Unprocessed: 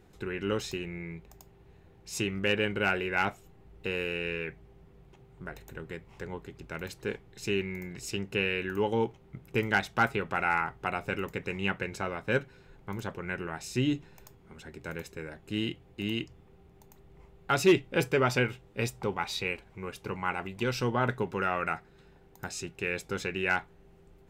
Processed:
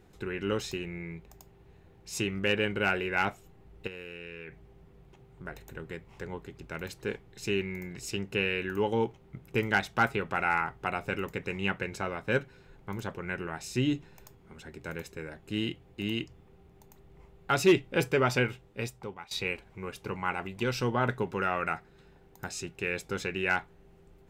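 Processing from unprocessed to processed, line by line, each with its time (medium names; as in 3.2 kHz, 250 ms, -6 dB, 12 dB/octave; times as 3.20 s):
3.87–5.45 s: compression, threshold -39 dBFS
18.49–19.31 s: fade out, to -18 dB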